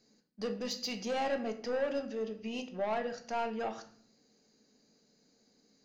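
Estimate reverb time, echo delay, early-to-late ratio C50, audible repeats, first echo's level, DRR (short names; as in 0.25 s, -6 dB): 0.55 s, none, 12.0 dB, none, none, 6.0 dB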